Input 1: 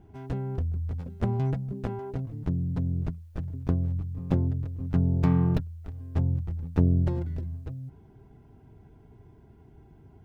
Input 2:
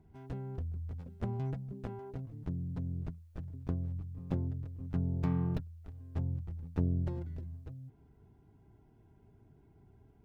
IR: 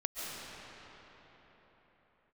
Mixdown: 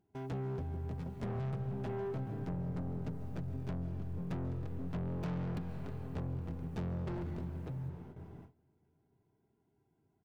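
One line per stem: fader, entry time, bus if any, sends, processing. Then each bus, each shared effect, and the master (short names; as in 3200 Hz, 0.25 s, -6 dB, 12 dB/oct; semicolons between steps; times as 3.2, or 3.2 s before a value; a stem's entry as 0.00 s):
-1.5 dB, 0.00 s, send -7 dB, HPF 140 Hz 12 dB/oct; upward compressor, threshold -59 dBFS; soft clip -36.5 dBFS, distortion -3 dB
-12.5 dB, 4.7 ms, send -7 dB, dry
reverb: on, pre-delay 0.1 s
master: gate with hold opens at -41 dBFS; compressor, threshold -34 dBFS, peak gain reduction 4.5 dB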